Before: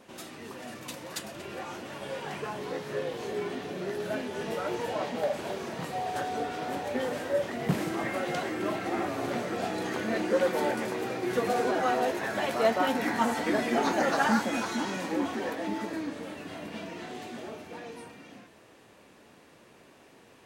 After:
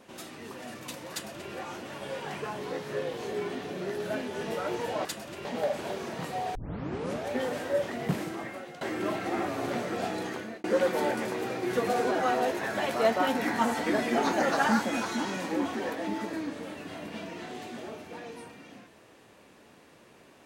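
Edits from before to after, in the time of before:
0:01.12–0:01.52: duplicate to 0:05.05
0:06.15: tape start 0.75 s
0:07.51–0:08.41: fade out, to −17.5 dB
0:09.59–0:10.24: fade out equal-power

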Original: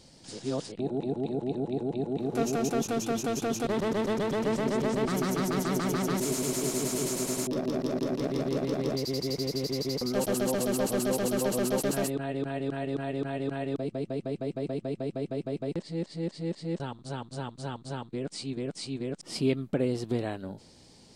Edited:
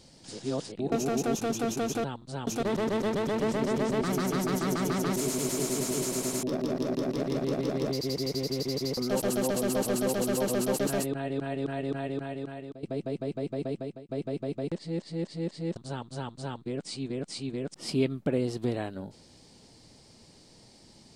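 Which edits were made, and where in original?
0:00.92–0:02.39: remove
0:13.03–0:13.87: fade out, to −15 dB
0:14.78–0:15.13: fade out
0:16.81–0:17.24: move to 0:03.51

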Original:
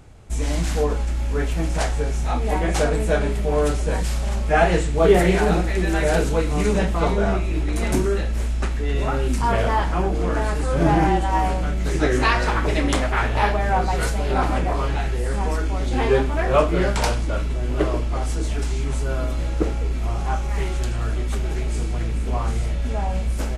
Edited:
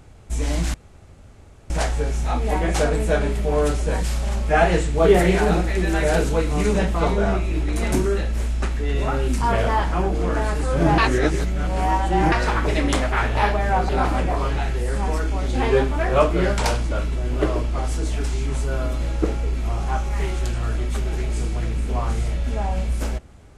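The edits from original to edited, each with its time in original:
0:00.74–0:01.70: fill with room tone
0:10.98–0:12.32: reverse
0:13.89–0:14.27: remove

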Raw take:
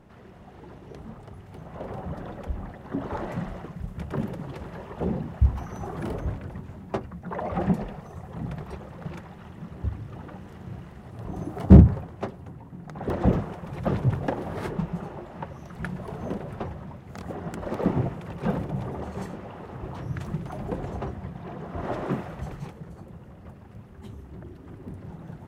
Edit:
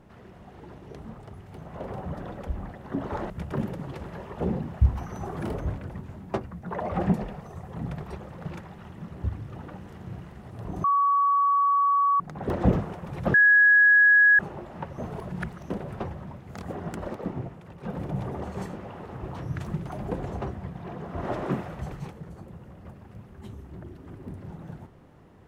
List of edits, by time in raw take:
0:03.30–0:03.90: remove
0:11.44–0:12.80: beep over 1,130 Hz −18.5 dBFS
0:13.94–0:14.99: beep over 1,670 Hz −13.5 dBFS
0:15.58–0:16.30: reverse
0:17.64–0:18.66: duck −8.5 dB, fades 0.13 s

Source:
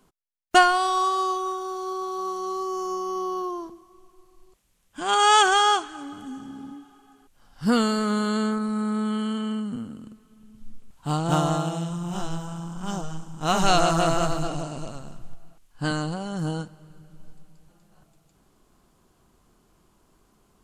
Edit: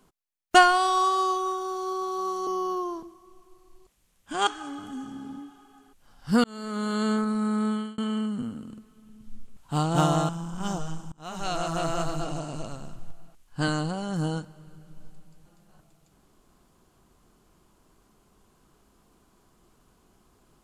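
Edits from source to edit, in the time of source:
0:02.47–0:03.14: remove
0:05.14–0:05.81: remove
0:07.78–0:08.47: fade in
0:09.03–0:09.32: fade out
0:11.63–0:12.52: remove
0:13.35–0:14.97: fade in, from −24 dB

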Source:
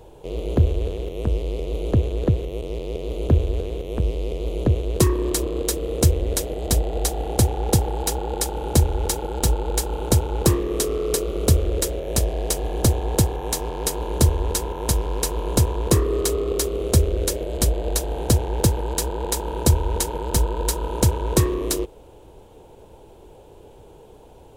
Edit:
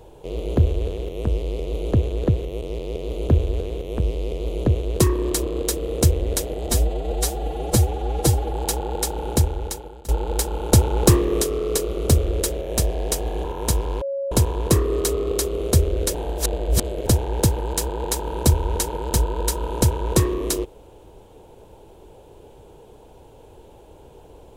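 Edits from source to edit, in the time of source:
0:06.69–0:07.92: time-stretch 1.5×
0:08.64–0:09.47: fade out, to −23 dB
0:10.11–0:10.80: clip gain +3.5 dB
0:12.83–0:14.65: remove
0:15.22–0:15.52: beep over 552 Hz −23 dBFS
0:17.35–0:18.27: reverse

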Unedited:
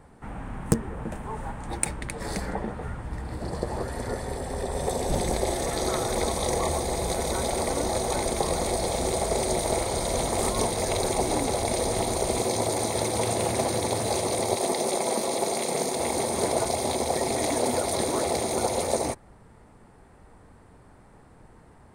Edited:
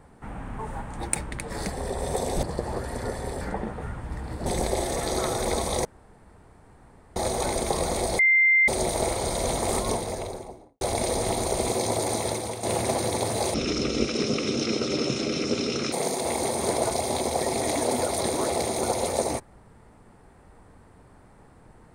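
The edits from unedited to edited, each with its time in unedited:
0:00.59–0:01.29: remove
0:02.42–0:03.47: swap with 0:04.45–0:05.16
0:06.55–0:07.86: fill with room tone
0:08.89–0:09.38: beep over 2,090 Hz −15.5 dBFS
0:10.38–0:11.51: fade out and dull
0:12.91–0:13.33: fade out, to −12 dB
0:14.24–0:15.67: play speed 60%

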